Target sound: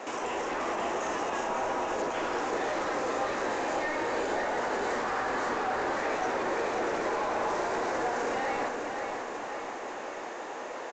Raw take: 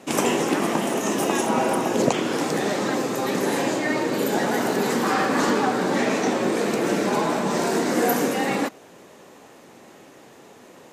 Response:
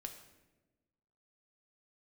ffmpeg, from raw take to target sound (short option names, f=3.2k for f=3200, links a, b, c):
-filter_complex "[0:a]highpass=590,acompressor=threshold=-34dB:ratio=6,alimiter=level_in=6.5dB:limit=-24dB:level=0:latency=1,volume=-6.5dB,aresample=16000,asoftclip=type=tanh:threshold=-39dB,aresample=44100,aecho=1:1:537|1074|1611|2148|2685|3222|3759|4296:0.501|0.301|0.18|0.108|0.065|0.039|0.0234|0.014,asplit=2[a][b];[1:a]atrim=start_sample=2205,asetrate=22050,aresample=44100,lowpass=2.2k[c];[b][c]afir=irnorm=-1:irlink=0,volume=4dB[d];[a][d]amix=inputs=2:normalize=0,volume=4.5dB"